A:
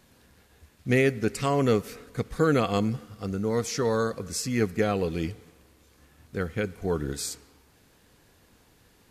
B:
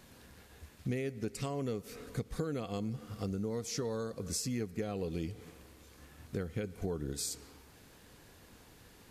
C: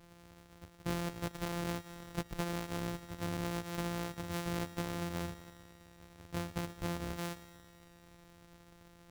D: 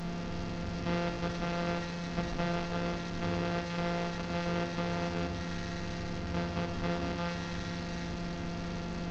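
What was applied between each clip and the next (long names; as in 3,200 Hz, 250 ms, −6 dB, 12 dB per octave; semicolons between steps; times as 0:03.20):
downward compressor 6 to 1, threshold −35 dBFS, peak gain reduction 16.5 dB; dynamic equaliser 1,500 Hz, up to −7 dB, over −55 dBFS, Q 0.77; level +2 dB
samples sorted by size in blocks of 256 samples; delay with a high-pass on its return 114 ms, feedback 75%, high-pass 1,700 Hz, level −18 dB; level −1.5 dB
linear delta modulator 32 kbit/s, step −35 dBFS; convolution reverb RT60 0.85 s, pre-delay 4 ms, DRR 4.5 dB; level +2.5 dB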